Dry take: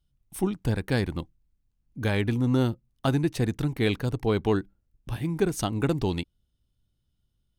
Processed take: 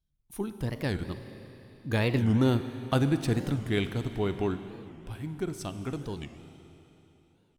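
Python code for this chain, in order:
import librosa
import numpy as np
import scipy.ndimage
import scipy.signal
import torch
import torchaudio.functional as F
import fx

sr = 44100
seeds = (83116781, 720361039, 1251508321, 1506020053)

y = fx.doppler_pass(x, sr, speed_mps=25, closest_m=28.0, pass_at_s=2.54)
y = fx.rev_schroeder(y, sr, rt60_s=3.4, comb_ms=33, drr_db=9.5)
y = fx.record_warp(y, sr, rpm=45.0, depth_cents=250.0)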